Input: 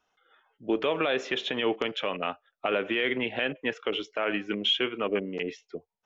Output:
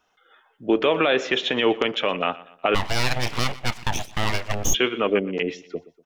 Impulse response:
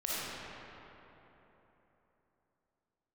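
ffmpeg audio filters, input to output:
-filter_complex "[0:a]aecho=1:1:121|242|363:0.112|0.046|0.0189,asplit=3[link_01][link_02][link_03];[link_01]afade=type=out:start_time=2.74:duration=0.02[link_04];[link_02]aeval=exprs='abs(val(0))':channel_layout=same,afade=type=in:start_time=2.74:duration=0.02,afade=type=out:start_time=4.73:duration=0.02[link_05];[link_03]afade=type=in:start_time=4.73:duration=0.02[link_06];[link_04][link_05][link_06]amix=inputs=3:normalize=0,volume=7dB"

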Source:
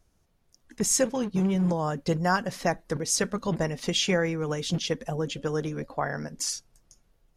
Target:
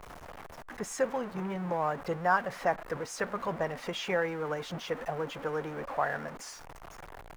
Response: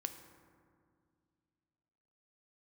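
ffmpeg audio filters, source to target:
-filter_complex "[0:a]aeval=exprs='val(0)+0.5*0.0299*sgn(val(0))':channel_layout=same,acrossover=split=530 2000:gain=0.2 1 0.112[link_01][link_02][link_03];[link_01][link_02][link_03]amix=inputs=3:normalize=0"

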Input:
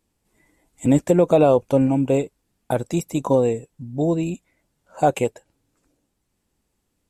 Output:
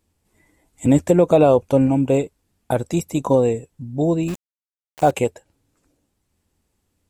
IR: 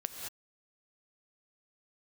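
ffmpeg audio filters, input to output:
-filter_complex "[0:a]equalizer=frequency=83:width_type=o:width=0.35:gain=9.5,asettb=1/sr,asplit=3[link_01][link_02][link_03];[link_01]atrim=end=4.284[link_04];[link_02]atrim=start=4.28:end=5.11,asetpts=PTS-STARTPTS,afade=type=in:duration=0.004:curve=qsin,afade=type=out:start_time=0.826:duration=0.004:curve=qsin,aeval=exprs='val(0)*gte(abs(val(0)),0.0299)':channel_layout=same[link_05];[link_03]atrim=start=5.106[link_06];[link_04][link_05]acrossfade=duration=0.004:curve1=hsin:curve2=qsin[link_07];[link_07][link_06]acrossfade=duration=0.004:curve1=qsin:curve2=hsin,volume=1.5dB"

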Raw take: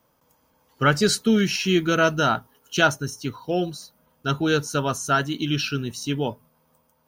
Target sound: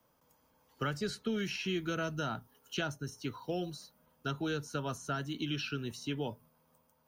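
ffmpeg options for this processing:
ffmpeg -i in.wav -filter_complex "[0:a]acrossover=split=120|330|3800[link_01][link_02][link_03][link_04];[link_01]acompressor=threshold=-41dB:ratio=4[link_05];[link_02]acompressor=threshold=-35dB:ratio=4[link_06];[link_03]acompressor=threshold=-31dB:ratio=4[link_07];[link_04]acompressor=threshold=-46dB:ratio=4[link_08];[link_05][link_06][link_07][link_08]amix=inputs=4:normalize=0,volume=-6dB" out.wav

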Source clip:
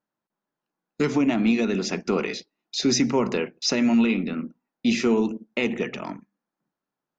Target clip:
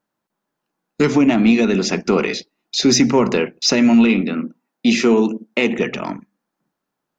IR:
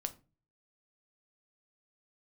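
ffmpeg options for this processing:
-filter_complex "[0:a]asettb=1/sr,asplit=3[link_01][link_02][link_03];[link_01]atrim=end=4.214[link_04];[link_02]atrim=start=4.21:end=5.79,asetpts=PTS-STARTPTS,afade=type=in:duration=0.004:curve=qsin,afade=type=out:start_time=1.576:duration=0.004:curve=qsin,highpass=170[link_05];[link_03]atrim=start=5.786[link_06];[link_04][link_05]acrossfade=duration=0.004:curve1=hsin:curve2=qsin[link_07];[link_07][link_06]acrossfade=duration=0.004:curve1=qsin:curve2=hsin,acontrast=61,volume=1.5dB"

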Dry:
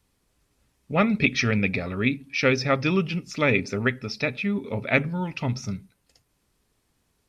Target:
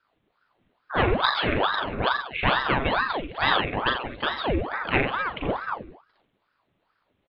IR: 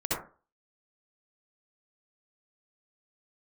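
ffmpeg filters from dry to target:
-af "aresample=8000,aresample=44100,aecho=1:1:40|84|132.4|185.6|244.2:0.631|0.398|0.251|0.158|0.1,aeval=exprs='val(0)*sin(2*PI*790*n/s+790*0.85/2.3*sin(2*PI*2.3*n/s))':channel_layout=same"

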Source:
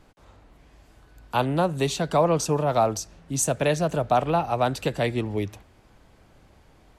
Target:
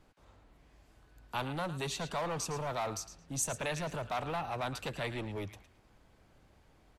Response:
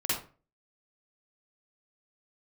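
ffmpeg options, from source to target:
-filter_complex "[0:a]acrossover=split=1200[link_01][link_02];[link_01]asoftclip=type=hard:threshold=-26.5dB[link_03];[link_02]asplit=2[link_04][link_05];[link_05]adelay=110,lowpass=frequency=3400:poles=1,volume=-6dB,asplit=2[link_06][link_07];[link_07]adelay=110,lowpass=frequency=3400:poles=1,volume=0.31,asplit=2[link_08][link_09];[link_09]adelay=110,lowpass=frequency=3400:poles=1,volume=0.31,asplit=2[link_10][link_11];[link_11]adelay=110,lowpass=frequency=3400:poles=1,volume=0.31[link_12];[link_04][link_06][link_08][link_10][link_12]amix=inputs=5:normalize=0[link_13];[link_03][link_13]amix=inputs=2:normalize=0,volume=-8.5dB"

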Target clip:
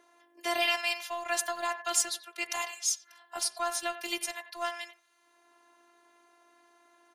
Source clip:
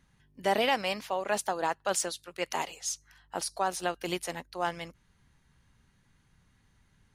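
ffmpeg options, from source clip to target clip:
ffmpeg -i in.wav -filter_complex "[0:a]afftfilt=real='hypot(re,im)*cos(PI*b)':imag='0':win_size=512:overlap=0.75,tiltshelf=frequency=780:gain=-8,acrossover=split=400|770|7000[link_01][link_02][link_03][link_04];[link_01]aeval=exprs='val(0)*gte(abs(val(0)),0.00355)':channel_layout=same[link_05];[link_02]acompressor=mode=upward:threshold=-45dB:ratio=2.5[link_06];[link_05][link_06][link_03][link_04]amix=inputs=4:normalize=0,bandreject=frequency=61.39:width_type=h:width=4,bandreject=frequency=122.78:width_type=h:width=4,bandreject=frequency=184.17:width_type=h:width=4,bandreject=frequency=245.56:width_type=h:width=4,bandreject=frequency=306.95:width_type=h:width=4,bandreject=frequency=368.34:width_type=h:width=4,bandreject=frequency=429.73:width_type=h:width=4,bandreject=frequency=491.12:width_type=h:width=4,bandreject=frequency=552.51:width_type=h:width=4,bandreject=frequency=613.9:width_type=h:width=4,bandreject=frequency=675.29:width_type=h:width=4,bandreject=frequency=736.68:width_type=h:width=4,bandreject=frequency=798.07:width_type=h:width=4,bandreject=frequency=859.46:width_type=h:width=4,bandreject=frequency=920.85:width_type=h:width=4,bandreject=frequency=982.24:width_type=h:width=4,bandreject=frequency=1043.63:width_type=h:width=4,bandreject=frequency=1105.02:width_type=h:width=4,bandreject=frequency=1166.41:width_type=h:width=4,bandreject=frequency=1227.8:width_type=h:width=4,bandreject=frequency=1289.19:width_type=h:width=4,bandreject=frequency=1350.58:width_type=h:width=4,bandreject=frequency=1411.97:width_type=h:width=4,bandreject=frequency=1473.36:width_type=h:width=4,bandreject=frequency=1534.75:width_type=h:width=4,bandreject=frequency=1596.14:width_type=h:width=4,bandreject=frequency=1657.53:width_type=h:width=4,bandreject=frequency=1718.92:width_type=h:width=4,bandreject=frequency=1780.31:width_type=h:width=4,bandreject=frequency=1841.7:width_type=h:width=4,bandreject=frequency=1903.09:width_type=h:width=4,bandreject=frequency=1964.48:width_type=h:width=4,bandreject=frequency=2025.87:width_type=h:width=4,bandreject=frequency=2087.26:width_type=h:width=4,bandreject=frequency=2148.65:width_type=h:width=4,bandreject=frequency=2210.04:width_type=h:width=4,bandreject=frequency=2271.43:width_type=h:width=4,asplit=2[link_07][link_08];[link_08]adelay=90,highpass=300,lowpass=3400,asoftclip=type=hard:threshold=-23dB,volume=-13dB[link_09];[link_07][link_09]amix=inputs=2:normalize=0" out.wav

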